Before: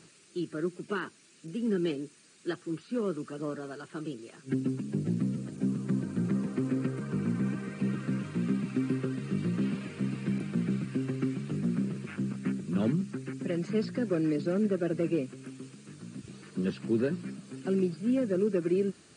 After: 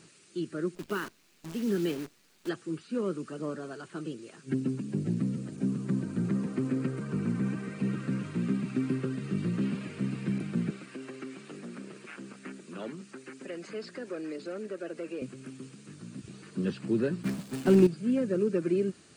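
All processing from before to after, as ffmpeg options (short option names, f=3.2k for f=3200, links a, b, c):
-filter_complex "[0:a]asettb=1/sr,asplit=3[a][b][c];[a]atrim=end=0.754[d];[b]atrim=start=0.75:end=2.49,asetpts=PTS-STARTPTS,afade=t=in:d=0.004:c=qsin,afade=t=out:st=1.736:d=0.004:c=qsin,lowpass=6k,acrusher=bits=8:dc=4:mix=0:aa=0.000001[e];[c]atrim=start=2.486[f];[d][e]acrossfade=d=0.004:c1=hsin:c2=qsin[g];[g][f]acrossfade=d=0.004:c1=qsin:c2=hsin,asettb=1/sr,asplit=3[h][i][j];[h]atrim=end=10.704[k];[i]atrim=start=10.7:end=15.22,asetpts=PTS-STARTPTS,afade=t=in:d=0.004:c=qsin,afade=t=out:st=4.516:d=0.004:c=qsin,highpass=430,acompressor=threshold=-39dB:ratio=1.5:attack=3.2:release=140:knee=1:detection=peak[l];[j]atrim=start=15.216[m];[k][l]acrossfade=d=0.004:c1=hsin:c2=qsin[n];[n][m]acrossfade=d=0.004:c1=qsin:c2=hsin,asettb=1/sr,asplit=3[o][p][q];[o]atrim=end=17.234[r];[p]atrim=start=17.23:end=17.87,asetpts=PTS-STARTPTS,afade=t=in:d=0.004:c=qsin,afade=t=out:st=0.636:d=0.004:c=qsin,aeval=exprs='val(0)+0.5*0.00944*sgn(val(0))':c=same,agate=range=-33dB:threshold=-35dB:ratio=3:release=100:detection=peak,acontrast=85[s];[q]atrim=start=17.866[t];[r][s]acrossfade=d=0.004:c1=hsin:c2=qsin[u];[u][t]acrossfade=d=0.004:c1=qsin:c2=hsin"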